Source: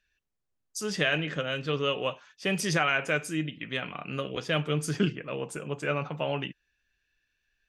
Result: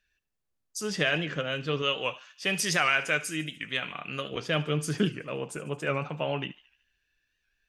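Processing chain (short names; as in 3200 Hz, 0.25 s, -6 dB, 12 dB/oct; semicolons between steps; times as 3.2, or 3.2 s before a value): 1.82–4.32 tilt shelf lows -4.5 dB, about 1100 Hz; thinning echo 74 ms, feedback 60%, high-pass 1200 Hz, level -17 dB; record warp 78 rpm, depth 100 cents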